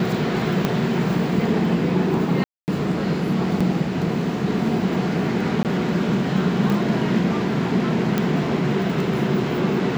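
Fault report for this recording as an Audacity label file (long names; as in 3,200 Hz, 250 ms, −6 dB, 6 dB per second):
0.650000	0.650000	click −7 dBFS
2.440000	2.680000	drop-out 239 ms
3.600000	3.610000	drop-out 5.5 ms
5.630000	5.650000	drop-out 18 ms
6.700000	6.700000	click −12 dBFS
8.180000	8.180000	click −7 dBFS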